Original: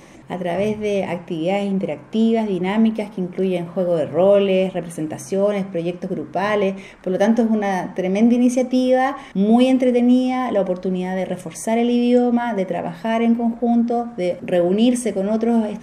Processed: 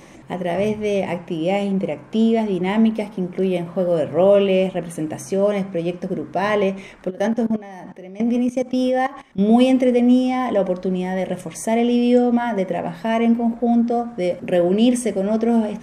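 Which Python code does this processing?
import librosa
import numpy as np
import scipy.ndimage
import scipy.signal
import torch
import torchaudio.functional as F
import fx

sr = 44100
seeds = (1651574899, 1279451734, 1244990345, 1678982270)

y = fx.level_steps(x, sr, step_db=18, at=(7.09, 9.39), fade=0.02)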